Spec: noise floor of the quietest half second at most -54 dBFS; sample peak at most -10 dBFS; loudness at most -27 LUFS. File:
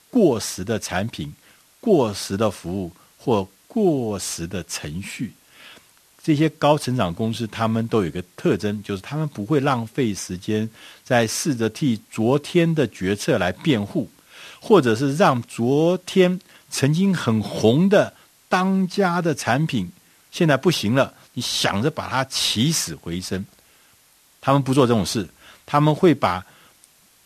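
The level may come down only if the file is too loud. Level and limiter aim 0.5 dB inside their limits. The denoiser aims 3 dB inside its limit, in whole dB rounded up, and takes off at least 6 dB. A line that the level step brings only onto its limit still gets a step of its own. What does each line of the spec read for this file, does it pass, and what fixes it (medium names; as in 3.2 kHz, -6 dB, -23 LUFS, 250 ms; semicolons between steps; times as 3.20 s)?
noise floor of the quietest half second -56 dBFS: pass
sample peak -2.5 dBFS: fail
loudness -21.5 LUFS: fail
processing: trim -6 dB; peak limiter -10.5 dBFS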